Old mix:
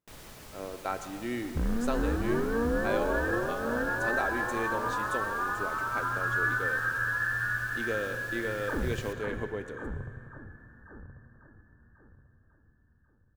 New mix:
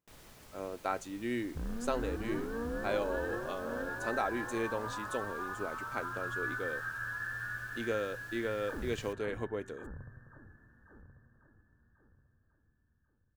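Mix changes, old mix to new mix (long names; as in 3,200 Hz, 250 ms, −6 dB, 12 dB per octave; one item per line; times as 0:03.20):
first sound −7.0 dB
second sound −9.0 dB
reverb: off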